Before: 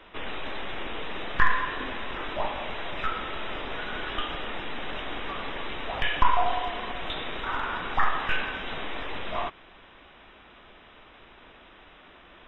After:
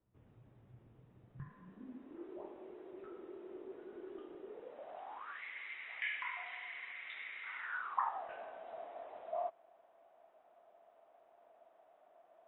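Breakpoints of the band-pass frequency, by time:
band-pass, Q 10
1.29 s 120 Hz
2.3 s 370 Hz
4.43 s 370 Hz
5.16 s 900 Hz
5.42 s 2100 Hz
7.57 s 2100 Hz
8.24 s 670 Hz

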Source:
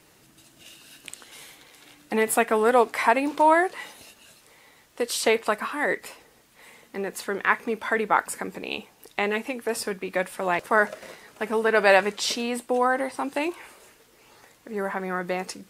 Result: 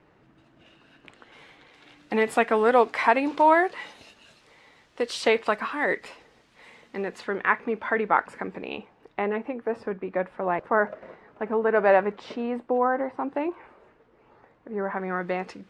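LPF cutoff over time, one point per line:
1.11 s 1700 Hz
2.17 s 4500 Hz
7.01 s 4500 Hz
7.48 s 2300 Hz
8.6 s 2300 Hz
9.35 s 1300 Hz
14.72 s 1300 Hz
15.19 s 2800 Hz

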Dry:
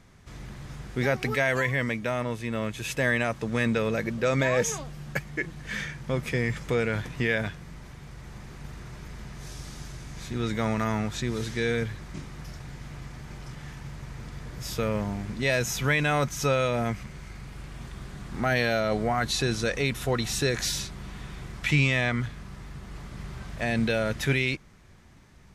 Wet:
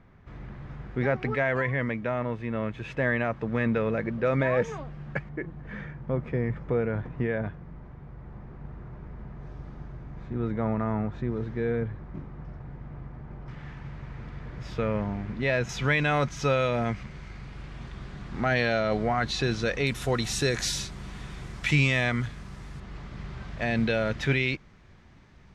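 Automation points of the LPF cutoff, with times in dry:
1900 Hz
from 5.29 s 1100 Hz
from 13.48 s 2500 Hz
from 15.69 s 4400 Hz
from 19.87 s 10000 Hz
from 22.8 s 4400 Hz

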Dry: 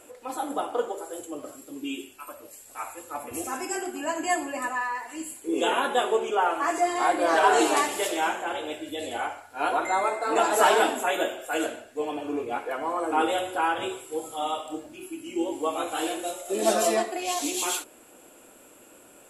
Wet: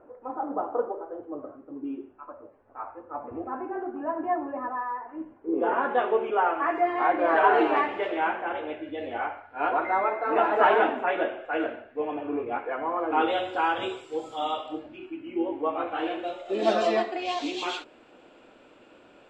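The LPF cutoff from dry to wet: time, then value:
LPF 24 dB/oct
5.55 s 1300 Hz
6.06 s 2400 Hz
12.95 s 2400 Hz
13.61 s 5400 Hz
14.44 s 5400 Hz
15.3 s 2300 Hz
15.82 s 2300 Hz
16.62 s 4200 Hz

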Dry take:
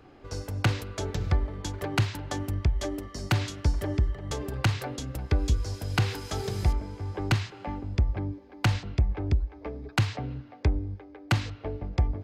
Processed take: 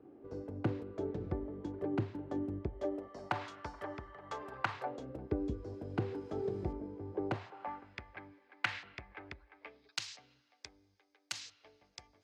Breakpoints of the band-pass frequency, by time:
band-pass, Q 1.6
2.54 s 330 Hz
3.54 s 1100 Hz
4.7 s 1100 Hz
5.22 s 350 Hz
7.12 s 350 Hz
7.93 s 1900 Hz
9.54 s 1900 Hz
10.06 s 6400 Hz

